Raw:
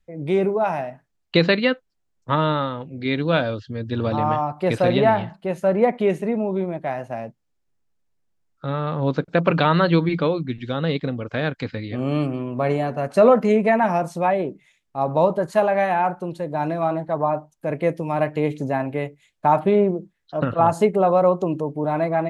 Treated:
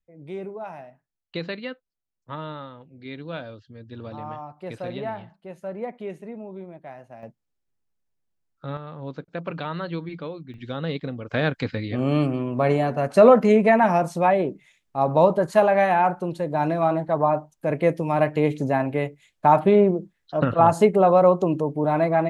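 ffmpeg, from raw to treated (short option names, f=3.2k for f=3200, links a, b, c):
-af "asetnsamples=n=441:p=0,asendcmd='7.23 volume volume -6dB;8.77 volume volume -13dB;10.54 volume volume -5.5dB;11.3 volume volume 1dB',volume=-14dB"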